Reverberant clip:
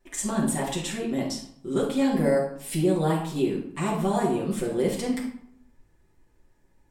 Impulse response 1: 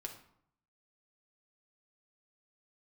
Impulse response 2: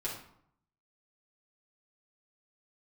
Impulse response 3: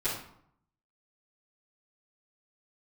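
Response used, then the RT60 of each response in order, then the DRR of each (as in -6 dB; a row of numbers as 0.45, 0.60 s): 2; 0.65, 0.65, 0.65 s; 2.0, -6.5, -15.0 dB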